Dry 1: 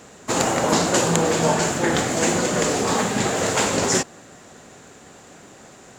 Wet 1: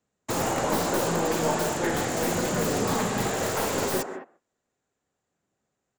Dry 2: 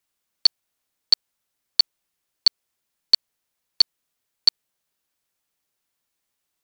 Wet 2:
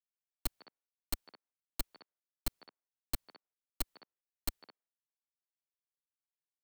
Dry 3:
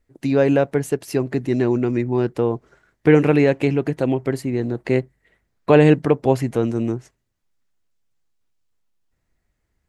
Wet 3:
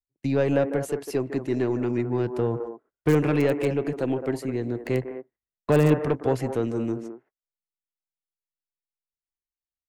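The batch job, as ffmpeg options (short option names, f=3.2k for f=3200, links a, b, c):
-filter_complex "[0:a]agate=range=-31dB:threshold=-36dB:ratio=16:detection=peak,aeval=exprs='(tanh(2.51*val(0)+0.2)-tanh(0.2))/2.51':c=same,acrossover=split=240|1900[a][b][c];[a]aphaser=in_gain=1:out_gain=1:delay=3.1:decay=0.5:speed=0.36:type=triangular[d];[b]aecho=1:1:151.6|212.8:0.355|0.355[e];[c]aeval=exprs='(mod(13.3*val(0)+1,2)-1)/13.3':c=same[f];[d][e][f]amix=inputs=3:normalize=0,volume=-5dB"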